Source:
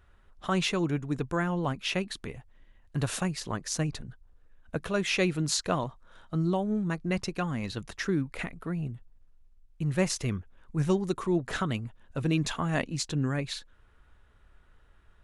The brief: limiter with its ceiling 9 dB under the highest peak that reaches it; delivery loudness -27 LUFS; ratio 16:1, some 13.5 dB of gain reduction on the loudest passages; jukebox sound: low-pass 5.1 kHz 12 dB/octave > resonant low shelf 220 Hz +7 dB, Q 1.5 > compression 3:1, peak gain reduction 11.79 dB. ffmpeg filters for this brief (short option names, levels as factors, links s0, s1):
-af "acompressor=threshold=0.0178:ratio=16,alimiter=level_in=2.24:limit=0.0631:level=0:latency=1,volume=0.447,lowpass=5100,lowshelf=f=220:t=q:w=1.5:g=7,acompressor=threshold=0.00708:ratio=3,volume=7.94"